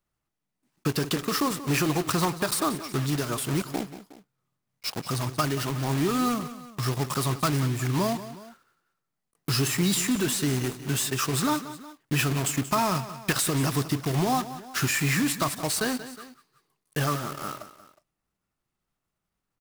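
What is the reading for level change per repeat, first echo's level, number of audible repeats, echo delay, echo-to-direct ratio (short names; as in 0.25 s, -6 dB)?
-5.5 dB, -14.0 dB, 2, 0.182 s, -13.0 dB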